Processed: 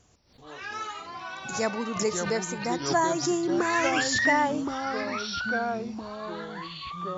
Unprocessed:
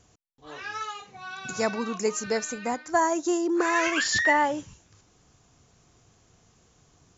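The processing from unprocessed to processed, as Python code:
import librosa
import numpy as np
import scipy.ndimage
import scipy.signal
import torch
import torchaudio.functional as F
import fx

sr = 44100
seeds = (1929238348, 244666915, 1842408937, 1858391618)

y = fx.echo_pitch(x, sr, ms=133, semitones=-4, count=3, db_per_echo=-6.0)
y = fx.pre_swell(y, sr, db_per_s=96.0)
y = F.gain(torch.from_numpy(y), -1.5).numpy()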